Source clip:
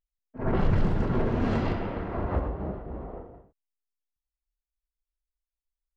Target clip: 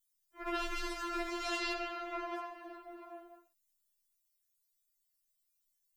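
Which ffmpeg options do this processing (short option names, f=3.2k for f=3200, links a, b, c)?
-af "tiltshelf=f=920:g=-9,crystalizer=i=3:c=0,afftfilt=real='re*4*eq(mod(b,16),0)':imag='im*4*eq(mod(b,16),0)':win_size=2048:overlap=0.75,volume=-4.5dB"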